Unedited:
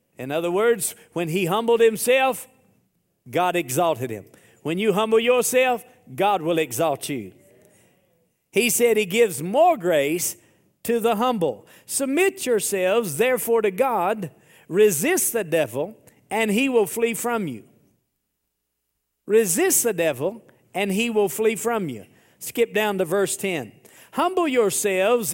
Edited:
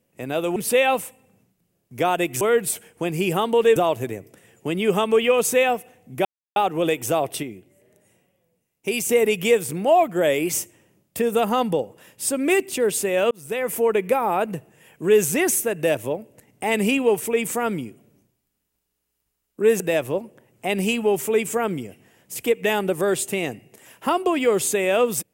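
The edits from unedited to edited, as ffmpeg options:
-filter_complex "[0:a]asplit=9[s0][s1][s2][s3][s4][s5][s6][s7][s8];[s0]atrim=end=0.562[s9];[s1]atrim=start=1.908:end=3.762[s10];[s2]atrim=start=0.558:end=1.912[s11];[s3]atrim=start=3.758:end=6.25,asetpts=PTS-STARTPTS,afade=t=out:st=2.488:d=0.004:c=hsin,apad=pad_dur=0.31[s12];[s4]atrim=start=6.25:end=7.122,asetpts=PTS-STARTPTS,afade=t=in:d=0.004:c=hsin[s13];[s5]atrim=start=7.118:end=8.782,asetpts=PTS-STARTPTS,volume=0.562[s14];[s6]atrim=start=8.778:end=13,asetpts=PTS-STARTPTS,afade=t=out:st=4.218:d=0.004:c=hsin[s15];[s7]atrim=start=13:end=19.492,asetpts=PTS-STARTPTS,afade=t=in:d=0.51[s16];[s8]atrim=start=19.908[s17];[s9][s10]acrossfade=d=0.004:c1=hsin:c2=hsin[s18];[s18][s11]acrossfade=d=0.004:c1=hsin:c2=hsin[s19];[s12][s13]concat=n=2:v=0:a=1[s20];[s19][s20]acrossfade=d=0.004:c1=hsin:c2=hsin[s21];[s21][s14]acrossfade=d=0.004:c1=hsin:c2=hsin[s22];[s15][s16]concat=n=2:v=0:a=1[s23];[s22][s23]acrossfade=d=0.004:c1=hsin:c2=hsin[s24];[s24][s17]acrossfade=d=0.004:c1=hsin:c2=hsin"

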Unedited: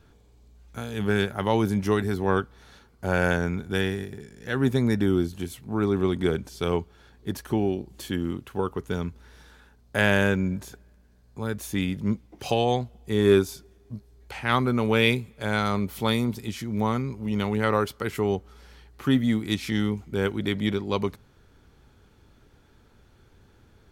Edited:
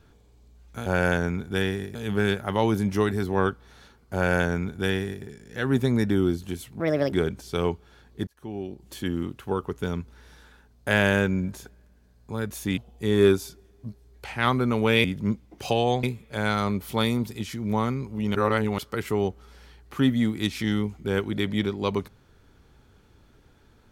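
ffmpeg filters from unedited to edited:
-filter_complex "[0:a]asplit=11[s0][s1][s2][s3][s4][s5][s6][s7][s8][s9][s10];[s0]atrim=end=0.862[s11];[s1]atrim=start=3.048:end=4.142[s12];[s2]atrim=start=0.858:end=5.714[s13];[s3]atrim=start=5.71:end=6.2,asetpts=PTS-STARTPTS,asetrate=67032,aresample=44100,atrim=end_sample=14216,asetpts=PTS-STARTPTS[s14];[s4]atrim=start=6.196:end=7.35,asetpts=PTS-STARTPTS,afade=t=out:st=1.15:d=0.004:c=hsin[s15];[s5]atrim=start=7.35:end=11.852,asetpts=PTS-STARTPTS,afade=t=in:d=0.83[s16];[s6]atrim=start=12.838:end=15.112[s17];[s7]atrim=start=11.848:end=12.842[s18];[s8]atrim=start=15.108:end=17.432[s19];[s9]atrim=start=17.428:end=17.862,asetpts=PTS-STARTPTS,areverse[s20];[s10]atrim=start=17.858[s21];[s11][s12]acrossfade=d=0.004:c1=hsin:c2=hsin[s22];[s22][s13]acrossfade=d=0.004:c1=hsin:c2=hsin[s23];[s23][s14]acrossfade=d=0.004:c1=hsin:c2=hsin[s24];[s15][s16]concat=n=2:v=0:a=1[s25];[s24][s25]acrossfade=d=0.004:c1=hsin:c2=hsin[s26];[s26][s17]acrossfade=d=0.004:c1=hsin:c2=hsin[s27];[s27][s18]acrossfade=d=0.004:c1=hsin:c2=hsin[s28];[s28][s19]acrossfade=d=0.004:c1=hsin:c2=hsin[s29];[s29][s20]acrossfade=d=0.004:c1=hsin:c2=hsin[s30];[s30][s21]acrossfade=d=0.004:c1=hsin:c2=hsin"

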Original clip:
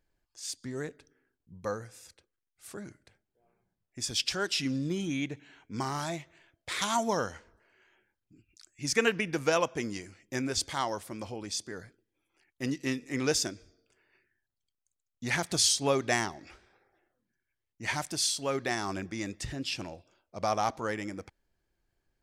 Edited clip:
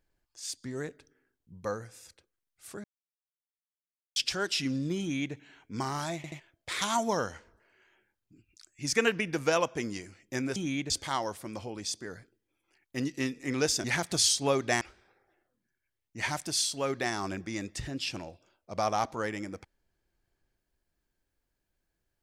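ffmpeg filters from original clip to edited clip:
-filter_complex "[0:a]asplit=10[s0][s1][s2][s3][s4][s5][s6][s7][s8][s9];[s0]atrim=end=2.84,asetpts=PTS-STARTPTS,afade=t=out:st=2.836:d=0.004:c=hsin[s10];[s1]atrim=start=2.84:end=4.16,asetpts=PTS-STARTPTS,volume=0[s11];[s2]atrim=start=4.16:end=6.242,asetpts=PTS-STARTPTS,afade=t=in:d=0.004:c=hsin[s12];[s3]atrim=start=6.158:end=6.242[s13];[s4]atrim=start=6.158:end=6.242[s14];[s5]atrim=start=6.398:end=10.562[s15];[s6]atrim=start=4.998:end=5.342[s16];[s7]atrim=start=10.558:end=13.502[s17];[s8]atrim=start=15.238:end=16.212[s18];[s9]atrim=start=16.458[s19];[s10][s11][s12]concat=n=3:v=0:a=1[s20];[s20][s13]acrossfade=d=0.004:c1=hsin:c2=hsin[s21];[s21][s14]acrossfade=d=0.004:c1=hsin:c2=hsin[s22];[s22][s15]acrossfade=d=0.004:c1=hsin:c2=hsin[s23];[s23][s16]acrossfade=d=0.004:c1=hsin:c2=hsin[s24];[s24][s17]acrossfade=d=0.004:c1=hsin:c2=hsin[s25];[s25][s18]acrossfade=d=0.004:c1=hsin:c2=hsin[s26];[s26][s19]acrossfade=d=0.004:c1=hsin:c2=hsin"

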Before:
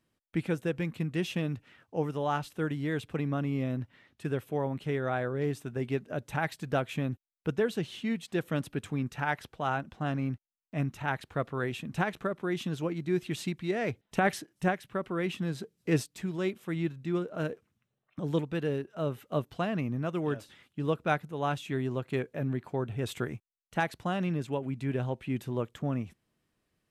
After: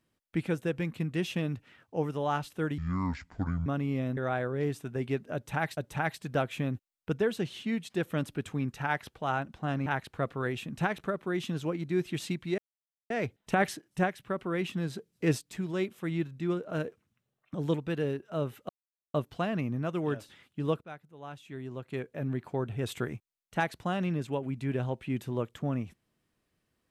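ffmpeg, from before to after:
-filter_complex "[0:a]asplit=9[s0][s1][s2][s3][s4][s5][s6][s7][s8];[s0]atrim=end=2.784[s9];[s1]atrim=start=2.78:end=3.3,asetpts=PTS-STARTPTS,asetrate=26019,aresample=44100[s10];[s2]atrim=start=3.296:end=3.812[s11];[s3]atrim=start=4.978:end=6.582[s12];[s4]atrim=start=6.148:end=10.242[s13];[s5]atrim=start=11.028:end=13.75,asetpts=PTS-STARTPTS,afade=t=out:st=2.718:d=0.004:c=hsin,apad=pad_dur=0.52[s14];[s6]atrim=start=13.75:end=19.34,asetpts=PTS-STARTPTS,afade=t=in:d=0.004:c=hsin,afade=t=out:st=5.586:d=0.004:c=hsin,apad=pad_dur=0.45[s15];[s7]atrim=start=19.34:end=21.01,asetpts=PTS-STARTPTS,afade=t=in:d=0.004:c=hsin,afade=t=out:st=1.666:d=0.004:c=hsin:silence=0.141254[s16];[s8]atrim=start=21.01,asetpts=PTS-STARTPTS,afade=t=in:d=1.59:c=qua:silence=0.141254[s17];[s9][s10]acrossfade=d=0.004:c1=hsin:c2=hsin[s18];[s18][s11]acrossfade=d=0.004:c1=hsin:c2=hsin[s19];[s19][s12]acrossfade=d=0.004:c1=hsin:c2=hsin[s20];[s20][s13]acrossfade=d=0.004:c1=hsin:c2=hsin[s21];[s14][s15][s16][s17]concat=n=4:v=0:a=1[s22];[s21][s22]acrossfade=d=0.004:c1=hsin:c2=hsin"

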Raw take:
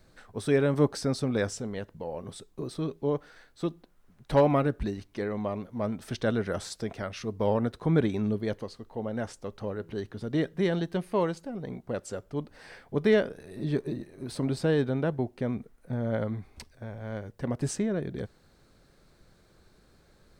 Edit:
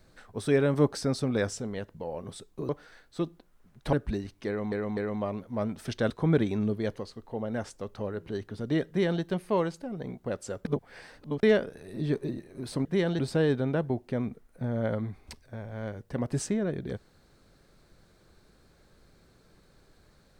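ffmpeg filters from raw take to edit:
-filter_complex "[0:a]asplit=10[s0][s1][s2][s3][s4][s5][s6][s7][s8][s9];[s0]atrim=end=2.692[s10];[s1]atrim=start=3.128:end=4.372[s11];[s2]atrim=start=4.658:end=5.452[s12];[s3]atrim=start=5.198:end=5.452[s13];[s4]atrim=start=5.198:end=6.332[s14];[s5]atrim=start=7.728:end=12.282[s15];[s6]atrim=start=12.278:end=13.062,asetpts=PTS-STARTPTS,areverse[s16];[s7]atrim=start=13.058:end=14.482[s17];[s8]atrim=start=10.508:end=10.852[s18];[s9]atrim=start=14.478[s19];[s10][s11]acrossfade=d=0.004:c1=hsin:c2=hsin[s20];[s20][s12]acrossfade=d=0.004:c1=hsin:c2=hsin[s21];[s21][s13]acrossfade=d=0.004:c1=hsin:c2=hsin[s22];[s22][s14]acrossfade=d=0.004:c1=hsin:c2=hsin[s23];[s23][s15]acrossfade=d=0.004:c1=hsin:c2=hsin[s24];[s24][s16]acrossfade=d=0.004:c1=hsin:c2=hsin[s25];[s25][s17]acrossfade=d=0.004:c1=hsin:c2=hsin[s26];[s26][s18]acrossfade=d=0.004:c1=hsin:c2=hsin[s27];[s27][s19]acrossfade=d=0.004:c1=hsin:c2=hsin"

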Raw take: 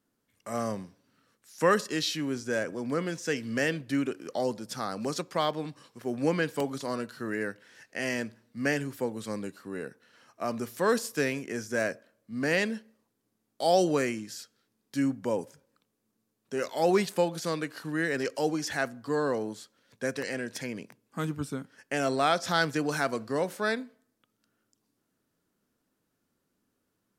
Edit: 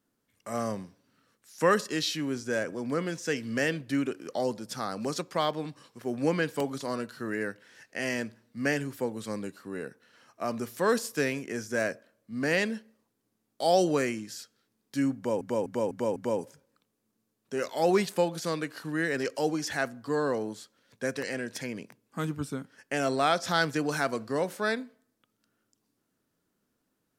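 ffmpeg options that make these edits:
-filter_complex "[0:a]asplit=5[s0][s1][s2][s3][s4];[s0]atrim=end=15.412[s5];[s1]atrim=start=15.158:end=15.412[s6];[s2]atrim=start=15.158:end=15.412[s7];[s3]atrim=start=15.158:end=15.412[s8];[s4]atrim=start=15.158[s9];[s5][s6]acrossfade=d=0.004:c1=hsin:c2=hsin[s10];[s10][s7]acrossfade=d=0.004:c1=hsin:c2=hsin[s11];[s11][s8]acrossfade=d=0.004:c1=hsin:c2=hsin[s12];[s12][s9]acrossfade=d=0.004:c1=hsin:c2=hsin"

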